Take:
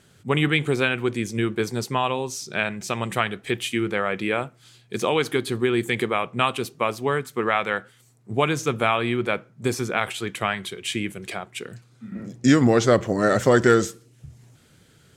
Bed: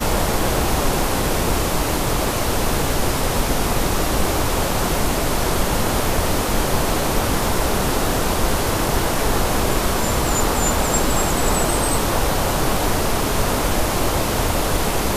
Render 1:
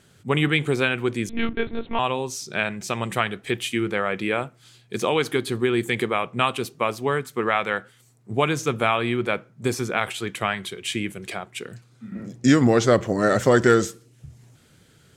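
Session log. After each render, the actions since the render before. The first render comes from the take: 1.29–1.99 monotone LPC vocoder at 8 kHz 230 Hz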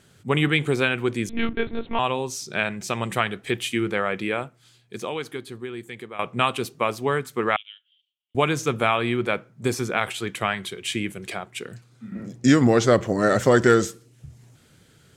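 4.04–6.19 fade out quadratic, to -14 dB; 7.56–8.35 Butterworth band-pass 3100 Hz, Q 5.9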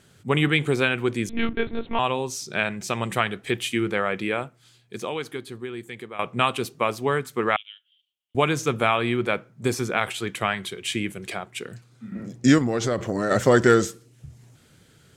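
12.58–13.31 compressor, threshold -20 dBFS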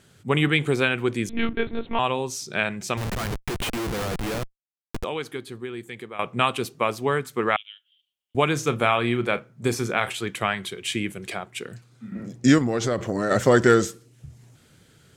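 2.97–5.04 Schmitt trigger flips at -29.5 dBFS; 8.52–10.16 doubler 34 ms -13.5 dB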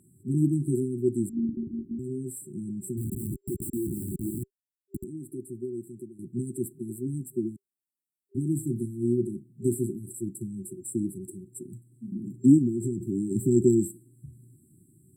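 HPF 110 Hz; FFT band-reject 390–7500 Hz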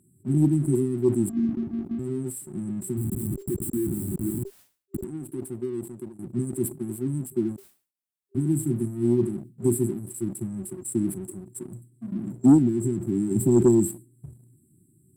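sample leveller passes 1; sustainer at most 150 dB/s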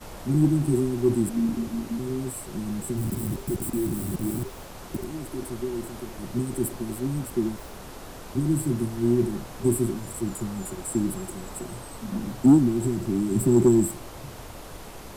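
add bed -21.5 dB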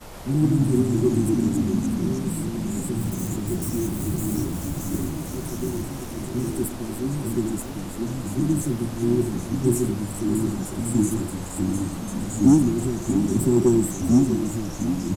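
echo 0.646 s -10 dB; echoes that change speed 0.119 s, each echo -2 st, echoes 3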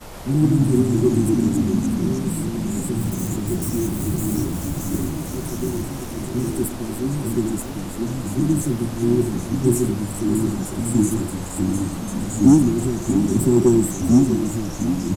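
gain +3 dB

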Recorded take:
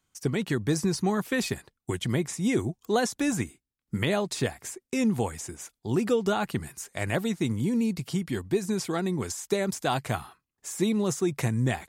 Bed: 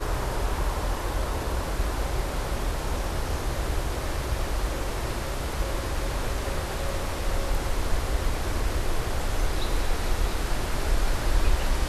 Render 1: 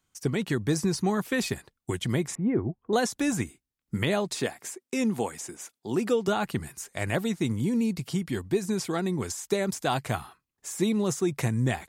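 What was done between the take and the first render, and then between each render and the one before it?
2.35–2.93 Bessel low-pass 1200 Hz, order 6; 4.36–6.28 HPF 190 Hz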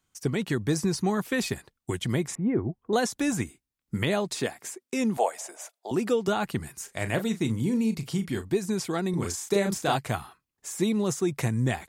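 5.17–5.91 resonant high-pass 630 Hz, resonance Q 5.8; 6.76–8.53 doubler 36 ms -11 dB; 9.1–9.96 doubler 35 ms -3 dB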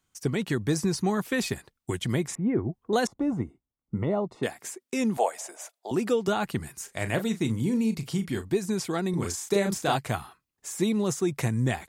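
3.07–4.43 polynomial smoothing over 65 samples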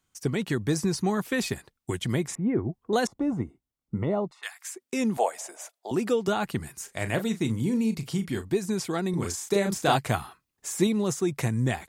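4.31–4.75 HPF 1100 Hz 24 dB/oct; 9.83–10.87 gain +3 dB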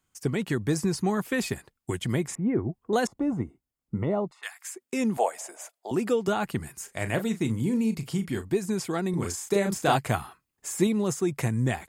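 bell 3900 Hz -4 dB 0.51 oct; notch 5800 Hz, Q 15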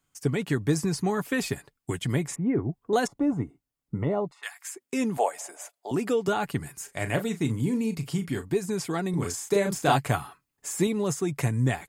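comb 7 ms, depth 34%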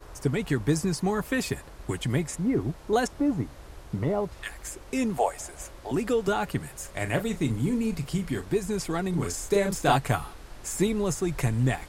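add bed -17.5 dB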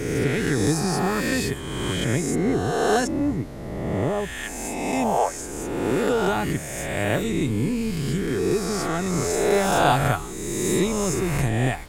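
spectral swells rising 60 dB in 1.81 s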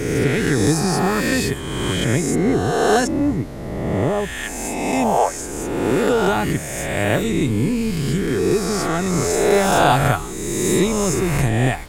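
gain +4.5 dB; limiter -3 dBFS, peak gain reduction 1.5 dB

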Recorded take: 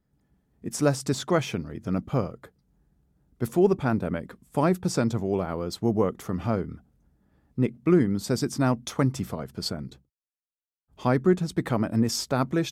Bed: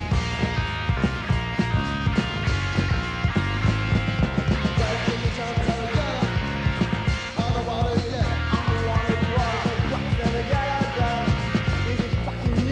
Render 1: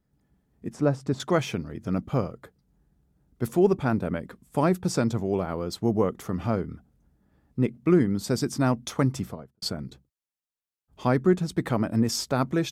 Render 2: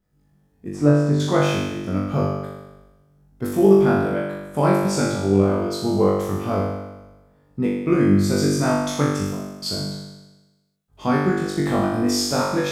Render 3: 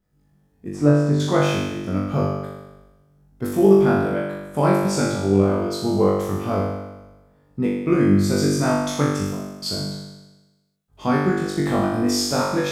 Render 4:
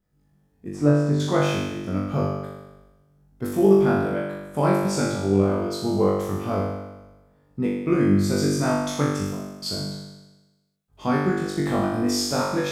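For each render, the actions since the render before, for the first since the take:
0.7–1.2 LPF 1000 Hz 6 dB/oct; 9.14–9.62 studio fade out
flutter echo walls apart 3.5 m, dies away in 1.1 s
nothing audible
gain -2.5 dB

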